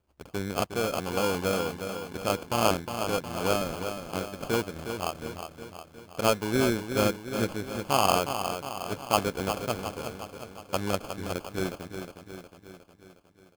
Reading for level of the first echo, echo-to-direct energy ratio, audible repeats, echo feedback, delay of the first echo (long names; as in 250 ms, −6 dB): −8.0 dB, −6.5 dB, 6, 57%, 361 ms